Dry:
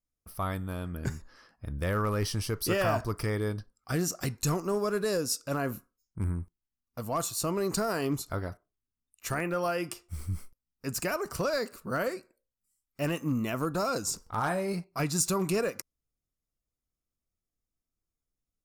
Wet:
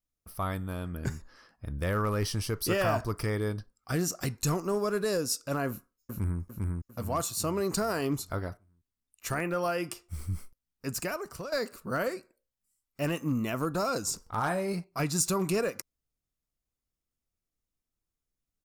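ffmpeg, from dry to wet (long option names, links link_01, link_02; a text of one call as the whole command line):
ffmpeg -i in.wav -filter_complex "[0:a]asplit=2[link_01][link_02];[link_02]afade=type=in:start_time=5.69:duration=0.01,afade=type=out:start_time=6.41:duration=0.01,aecho=0:1:400|800|1200|1600|2000|2400:0.841395|0.378628|0.170383|0.0766721|0.0345025|0.0155261[link_03];[link_01][link_03]amix=inputs=2:normalize=0,asplit=2[link_04][link_05];[link_04]atrim=end=11.52,asetpts=PTS-STARTPTS,afade=type=out:start_time=10.87:duration=0.65:silence=0.251189[link_06];[link_05]atrim=start=11.52,asetpts=PTS-STARTPTS,afade=type=in:duration=0.004:curve=hsin:silence=0.251189[link_07];[link_06][link_07]concat=n=2:v=0:a=1" out.wav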